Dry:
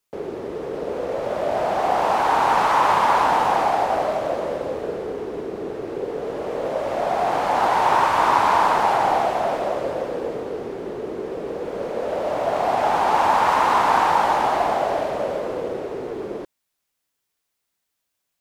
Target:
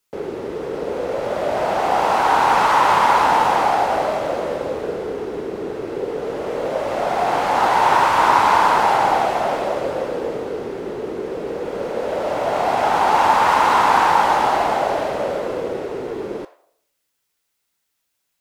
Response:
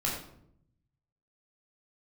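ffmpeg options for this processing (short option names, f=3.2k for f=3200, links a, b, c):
-filter_complex "[0:a]asplit=2[a][b];[b]highpass=f=680:w=0.5412,highpass=f=680:w=1.3066[c];[1:a]atrim=start_sample=2205[d];[c][d]afir=irnorm=-1:irlink=0,volume=-13dB[e];[a][e]amix=inputs=2:normalize=0,volume=2.5dB"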